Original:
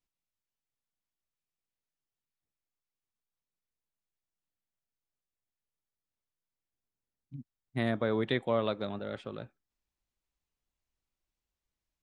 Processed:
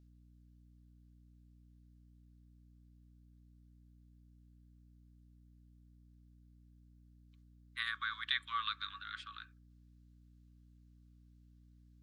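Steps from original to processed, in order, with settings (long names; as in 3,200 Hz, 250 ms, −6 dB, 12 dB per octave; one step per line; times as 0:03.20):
Chebyshev high-pass with heavy ripple 1,100 Hz, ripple 6 dB
mains hum 60 Hz, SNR 13 dB
level +5 dB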